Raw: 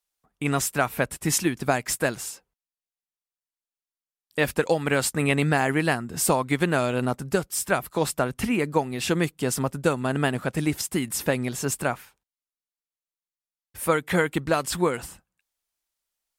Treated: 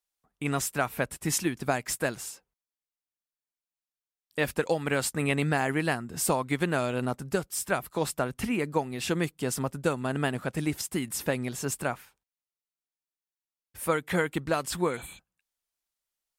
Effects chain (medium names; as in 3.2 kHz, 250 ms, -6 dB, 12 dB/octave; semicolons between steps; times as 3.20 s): spectral replace 14.91–15.16 s, 2.3–7.3 kHz before; trim -4.5 dB